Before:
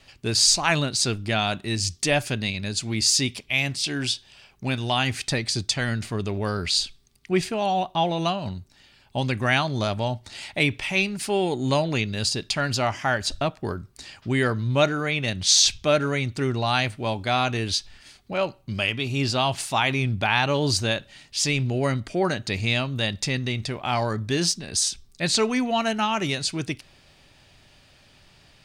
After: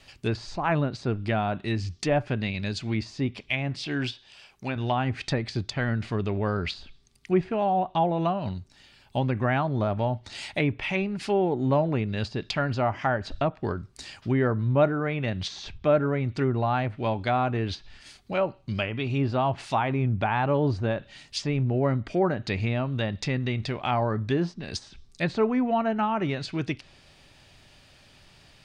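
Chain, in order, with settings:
treble cut that deepens with the level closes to 1,200 Hz, closed at −20 dBFS
0:04.12–0:04.76: low-shelf EQ 260 Hz −9 dB

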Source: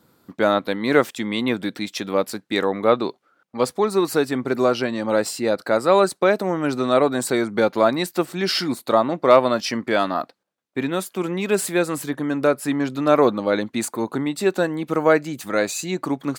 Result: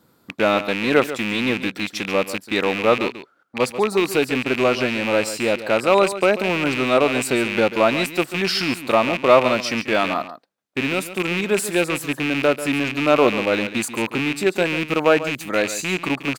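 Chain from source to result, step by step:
loose part that buzzes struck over −32 dBFS, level −13 dBFS
single-tap delay 140 ms −13 dB

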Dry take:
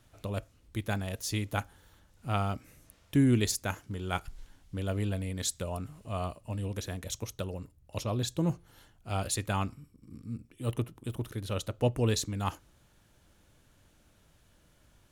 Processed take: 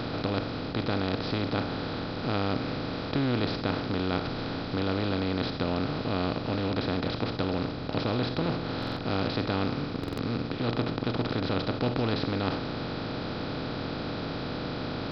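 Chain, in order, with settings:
compressor on every frequency bin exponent 0.2
downsampling to 11,025 Hz
buffer that repeats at 0:08.78/0:09.99, samples 2,048, times 3
level −6.5 dB

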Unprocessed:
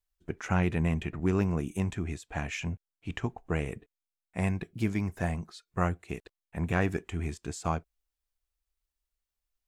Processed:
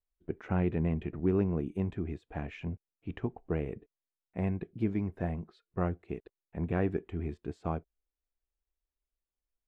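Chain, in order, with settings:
drawn EQ curve 130 Hz 0 dB, 400 Hz +5 dB, 1,000 Hz −4 dB, 2,300 Hz −7 dB, 3,700 Hz −10 dB, 6,700 Hz −25 dB
level −3.5 dB

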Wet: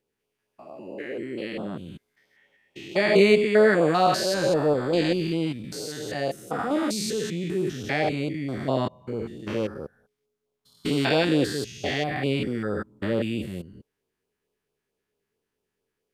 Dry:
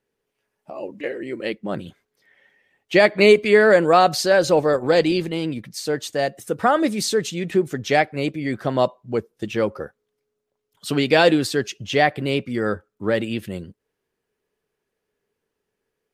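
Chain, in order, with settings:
spectrum averaged block by block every 200 ms
auto-filter notch sine 4.5 Hz 460–1,900 Hz

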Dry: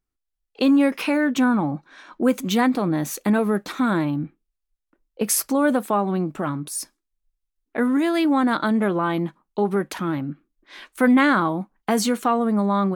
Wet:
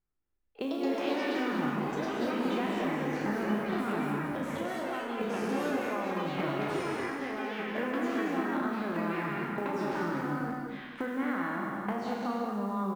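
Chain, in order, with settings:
peak hold with a decay on every bin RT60 1.13 s
low-pass filter 2,200 Hz 12 dB per octave
mains-hum notches 60/120/180/240/300 Hz
downward compressor 8 to 1, threshold −27 dBFS, peak gain reduction 15.5 dB
floating-point word with a short mantissa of 4 bits
on a send: single-tap delay 326 ms −12 dB
on the sum: delay with pitch and tempo change per echo 225 ms, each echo +4 semitones, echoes 3
double-tracking delay 34 ms −10.5 dB
reverb whose tail is shaped and stops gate 260 ms rising, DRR 2.5 dB
level −6 dB

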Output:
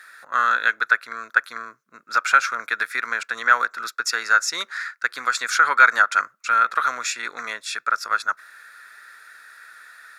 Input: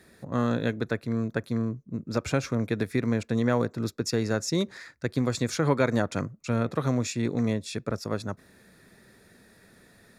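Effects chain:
high-pass with resonance 1,400 Hz, resonance Q 6.1
level +7 dB

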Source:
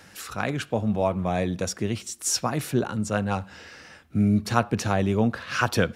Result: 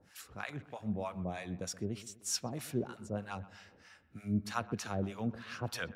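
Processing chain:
two-band tremolo in antiphase 3.2 Hz, depth 100%, crossover 760 Hz
delay with a low-pass on its return 126 ms, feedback 50%, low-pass 2,600 Hz, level −17 dB
level −9 dB

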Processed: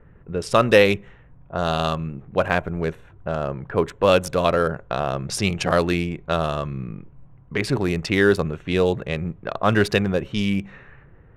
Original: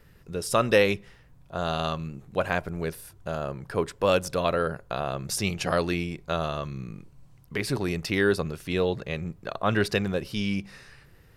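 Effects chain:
adaptive Wiener filter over 9 samples
low-pass that shuts in the quiet parts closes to 1,500 Hz, open at −24.5 dBFS
level +6 dB

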